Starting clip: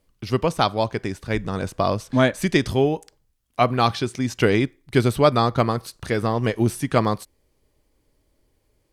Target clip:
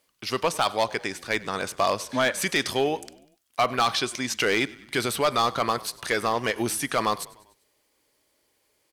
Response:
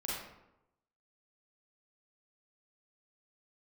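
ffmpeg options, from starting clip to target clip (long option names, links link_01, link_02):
-filter_complex "[0:a]alimiter=limit=-10.5dB:level=0:latency=1:release=22,highpass=frequency=1200:poles=1,volume=20.5dB,asoftclip=hard,volume=-20.5dB,asplit=2[link_01][link_02];[link_02]asplit=4[link_03][link_04][link_05][link_06];[link_03]adelay=98,afreqshift=-34,volume=-21dB[link_07];[link_04]adelay=196,afreqshift=-68,volume=-26.2dB[link_08];[link_05]adelay=294,afreqshift=-102,volume=-31.4dB[link_09];[link_06]adelay=392,afreqshift=-136,volume=-36.6dB[link_10];[link_07][link_08][link_09][link_10]amix=inputs=4:normalize=0[link_11];[link_01][link_11]amix=inputs=2:normalize=0,volume=6dB"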